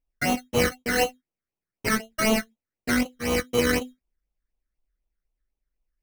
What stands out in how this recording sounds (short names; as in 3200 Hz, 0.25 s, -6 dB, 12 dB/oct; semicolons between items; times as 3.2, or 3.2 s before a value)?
aliases and images of a low sample rate 3500 Hz, jitter 0%; phasing stages 12, 4 Hz, lowest notch 790–1700 Hz